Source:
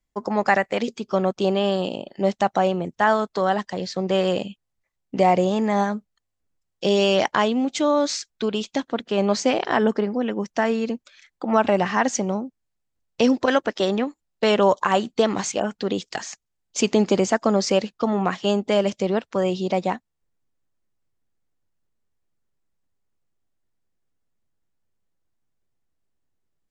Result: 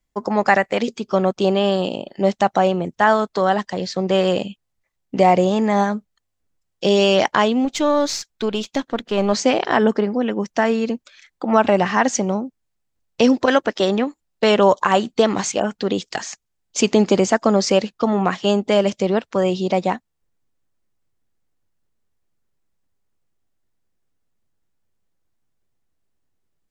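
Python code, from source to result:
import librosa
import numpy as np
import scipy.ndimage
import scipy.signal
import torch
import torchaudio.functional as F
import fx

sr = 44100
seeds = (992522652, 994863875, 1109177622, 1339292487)

y = fx.halfwave_gain(x, sr, db=-3.0, at=(7.65, 9.33))
y = y * 10.0 ** (3.5 / 20.0)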